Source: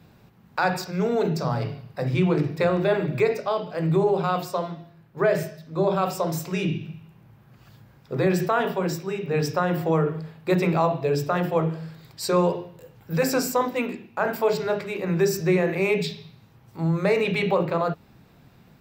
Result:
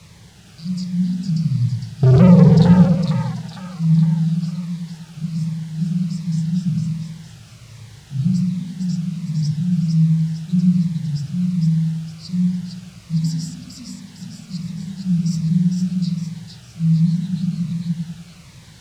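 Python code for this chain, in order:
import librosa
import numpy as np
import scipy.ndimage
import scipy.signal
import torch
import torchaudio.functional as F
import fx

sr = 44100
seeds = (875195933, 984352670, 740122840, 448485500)

p1 = fx.env_lowpass(x, sr, base_hz=2600.0, full_db=-19.0)
p2 = scipy.signal.sosfilt(scipy.signal.cheby1(4, 1.0, [190.0, 4400.0], 'bandstop', fs=sr, output='sos'), p1)
p3 = fx.peak_eq(p2, sr, hz=81.0, db=7.5, octaves=2.9)
p4 = fx.leveller(p3, sr, passes=5, at=(2.03, 2.85))
p5 = fx.quant_dither(p4, sr, seeds[0], bits=6, dither='triangular')
p6 = p4 + (p5 * 10.0 ** (-6.0 / 20.0))
p7 = fx.air_absorb(p6, sr, metres=85.0)
p8 = p7 + fx.echo_split(p7, sr, split_hz=790.0, low_ms=99, high_ms=457, feedback_pct=52, wet_db=-4, dry=0)
p9 = fx.notch_cascade(p8, sr, direction='falling', hz=1.3)
y = p9 * 10.0 ** (-1.0 / 20.0)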